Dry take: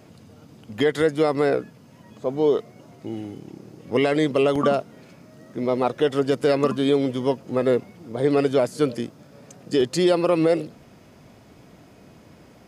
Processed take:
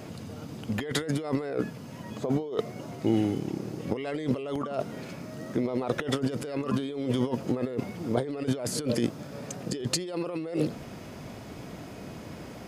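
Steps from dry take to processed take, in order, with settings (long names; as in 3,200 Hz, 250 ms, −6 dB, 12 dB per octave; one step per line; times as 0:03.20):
compressor whose output falls as the input rises −30 dBFS, ratio −1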